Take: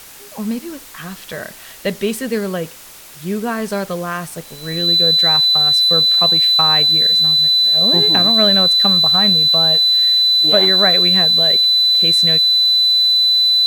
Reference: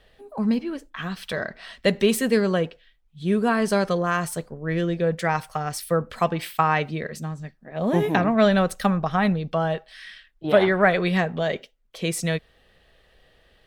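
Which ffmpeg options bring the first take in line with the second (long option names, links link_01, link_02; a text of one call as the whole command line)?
ffmpeg -i in.wav -af "bandreject=frequency=4000:width=30,afftdn=noise_reduction=21:noise_floor=-37" out.wav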